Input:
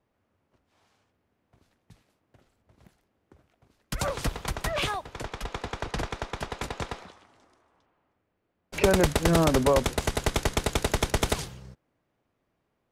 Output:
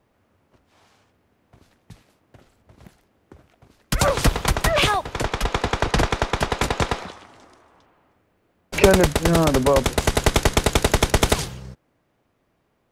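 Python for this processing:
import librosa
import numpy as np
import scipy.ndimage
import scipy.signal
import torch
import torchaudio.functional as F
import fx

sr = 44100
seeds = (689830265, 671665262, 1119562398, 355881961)

y = fx.rider(x, sr, range_db=4, speed_s=0.5)
y = F.gain(torch.from_numpy(y), 8.0).numpy()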